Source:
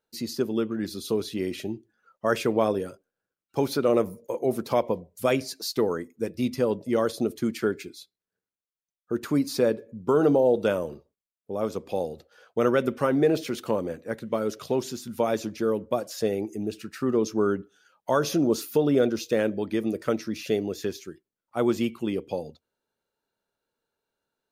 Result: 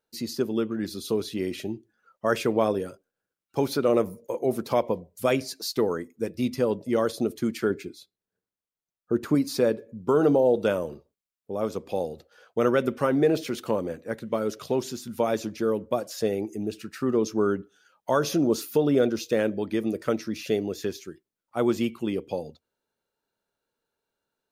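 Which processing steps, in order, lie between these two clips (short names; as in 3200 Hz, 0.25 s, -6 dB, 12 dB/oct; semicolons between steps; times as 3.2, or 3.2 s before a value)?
7.7–9.35 tilt shelf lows +4 dB, about 1200 Hz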